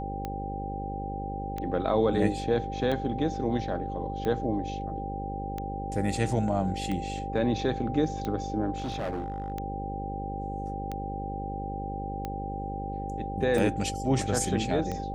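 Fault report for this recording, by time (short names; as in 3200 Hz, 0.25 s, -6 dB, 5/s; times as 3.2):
buzz 50 Hz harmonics 11 -36 dBFS
tick 45 rpm -20 dBFS
tone 790 Hz -35 dBFS
8.76–9.52 clipped -28 dBFS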